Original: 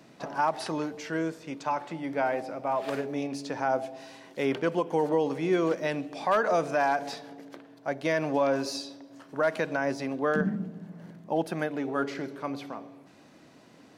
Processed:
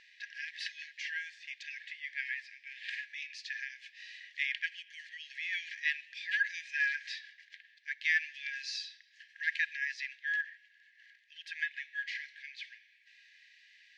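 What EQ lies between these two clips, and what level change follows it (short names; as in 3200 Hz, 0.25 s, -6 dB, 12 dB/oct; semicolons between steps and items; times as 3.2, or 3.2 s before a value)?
brick-wall FIR high-pass 1600 Hz; air absorption 160 m; high shelf 6800 Hz -10 dB; +7.5 dB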